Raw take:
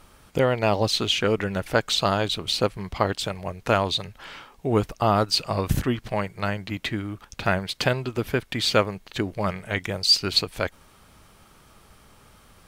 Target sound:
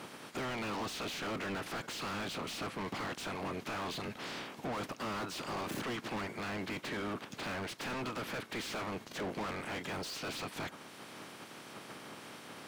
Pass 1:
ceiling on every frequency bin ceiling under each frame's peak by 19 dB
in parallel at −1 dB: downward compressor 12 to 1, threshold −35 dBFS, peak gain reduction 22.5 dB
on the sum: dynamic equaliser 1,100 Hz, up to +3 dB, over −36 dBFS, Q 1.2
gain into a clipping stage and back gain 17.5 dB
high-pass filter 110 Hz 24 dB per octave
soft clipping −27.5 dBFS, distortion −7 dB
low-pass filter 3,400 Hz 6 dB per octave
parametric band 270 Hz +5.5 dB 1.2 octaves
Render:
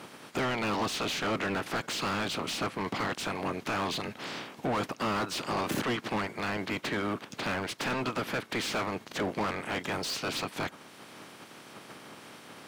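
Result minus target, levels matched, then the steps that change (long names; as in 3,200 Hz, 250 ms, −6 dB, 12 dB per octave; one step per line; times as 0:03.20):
soft clipping: distortion −5 dB
change: soft clipping −37 dBFS, distortion −2 dB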